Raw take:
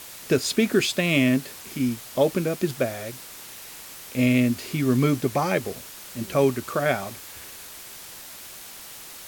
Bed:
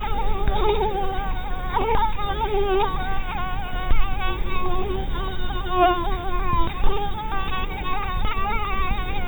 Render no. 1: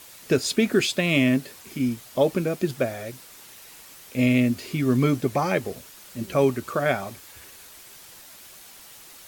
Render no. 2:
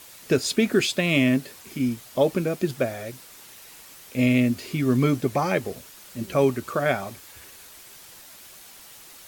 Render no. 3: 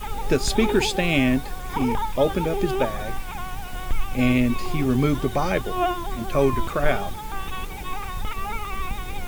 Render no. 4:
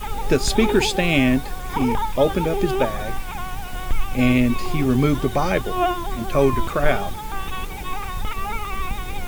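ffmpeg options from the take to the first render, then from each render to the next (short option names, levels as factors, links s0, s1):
-af "afftdn=nr=6:nf=-42"
-af anull
-filter_complex "[1:a]volume=0.531[s0];[0:a][s0]amix=inputs=2:normalize=0"
-af "volume=1.33"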